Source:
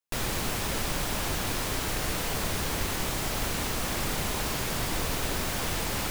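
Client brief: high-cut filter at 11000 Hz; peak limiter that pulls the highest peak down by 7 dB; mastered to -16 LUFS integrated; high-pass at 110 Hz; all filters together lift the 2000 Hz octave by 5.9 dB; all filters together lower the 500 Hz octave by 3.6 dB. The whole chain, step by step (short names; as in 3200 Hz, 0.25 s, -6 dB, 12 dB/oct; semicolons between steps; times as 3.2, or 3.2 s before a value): HPF 110 Hz; LPF 11000 Hz; bell 500 Hz -5 dB; bell 2000 Hz +7.5 dB; gain +16 dB; limiter -8.5 dBFS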